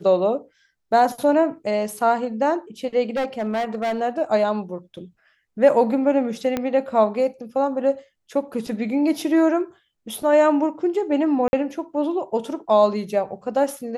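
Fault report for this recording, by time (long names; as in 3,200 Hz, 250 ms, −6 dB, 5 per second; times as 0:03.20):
0:03.09–0:04.02: clipping −20 dBFS
0:06.57: click −10 dBFS
0:11.48–0:11.53: drop-out 51 ms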